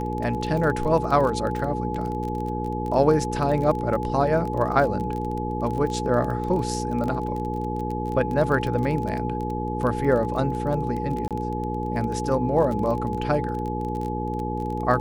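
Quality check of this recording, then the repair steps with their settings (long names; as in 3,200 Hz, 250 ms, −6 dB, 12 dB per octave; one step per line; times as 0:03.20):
surface crackle 24 per second −28 dBFS
mains hum 60 Hz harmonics 8 −29 dBFS
whistle 850 Hz −30 dBFS
0:07.08: drop-out 2.7 ms
0:11.28–0:11.31: drop-out 27 ms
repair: click removal
notch filter 850 Hz, Q 30
hum removal 60 Hz, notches 8
repair the gap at 0:07.08, 2.7 ms
repair the gap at 0:11.28, 27 ms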